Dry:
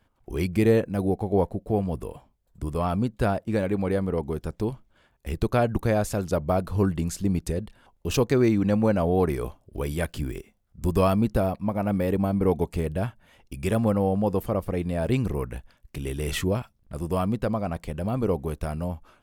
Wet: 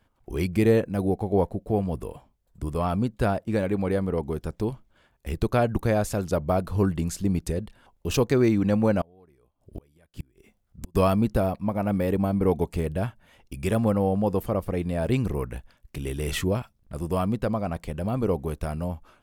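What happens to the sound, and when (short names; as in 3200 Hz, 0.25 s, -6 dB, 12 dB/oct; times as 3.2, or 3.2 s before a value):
9.01–10.95 flipped gate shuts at -22 dBFS, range -33 dB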